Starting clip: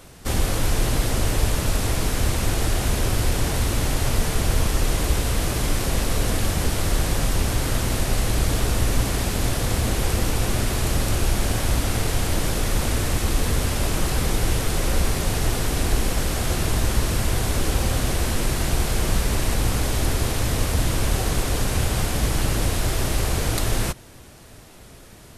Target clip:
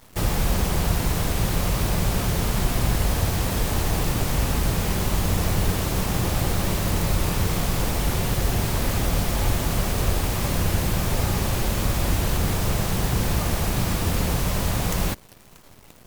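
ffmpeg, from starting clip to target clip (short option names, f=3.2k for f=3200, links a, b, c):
-af "acrusher=bits=7:dc=4:mix=0:aa=0.000001,asetrate=69678,aresample=44100,volume=-1.5dB"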